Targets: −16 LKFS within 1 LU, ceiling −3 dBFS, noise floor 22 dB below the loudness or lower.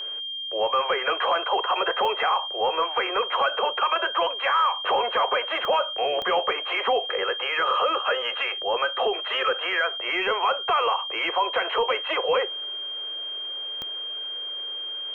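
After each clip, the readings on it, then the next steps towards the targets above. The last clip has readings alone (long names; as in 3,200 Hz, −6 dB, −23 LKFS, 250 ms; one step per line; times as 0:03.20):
number of clicks 4; interfering tone 3,200 Hz; level of the tone −30 dBFS; integrated loudness −24.5 LKFS; sample peak −13.0 dBFS; target loudness −16.0 LKFS
→ click removal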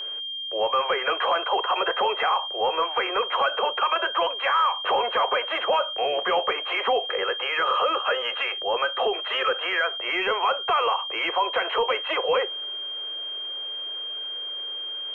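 number of clicks 0; interfering tone 3,200 Hz; level of the tone −30 dBFS
→ notch filter 3,200 Hz, Q 30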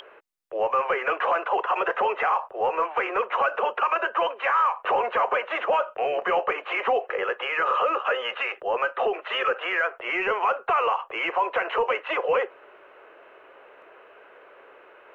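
interfering tone none found; integrated loudness −25.0 LKFS; sample peak −14.5 dBFS; target loudness −16.0 LKFS
→ level +9 dB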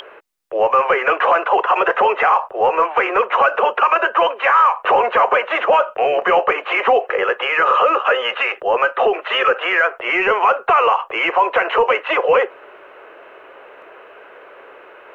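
integrated loudness −16.0 LKFS; sample peak −5.5 dBFS; background noise floor −43 dBFS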